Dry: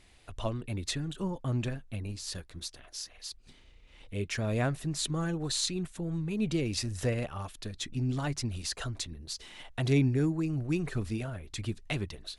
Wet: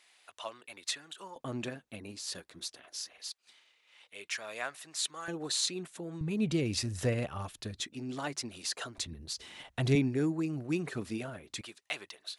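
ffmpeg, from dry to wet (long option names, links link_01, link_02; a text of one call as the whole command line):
ffmpeg -i in.wav -af "asetnsamples=nb_out_samples=441:pad=0,asendcmd='1.36 highpass f 250;3.28 highpass f 950;5.28 highpass f 310;6.21 highpass f 76;7.8 highpass f 310;8.98 highpass f 73;9.95 highpass f 200;11.61 highpass f 740',highpass=870" out.wav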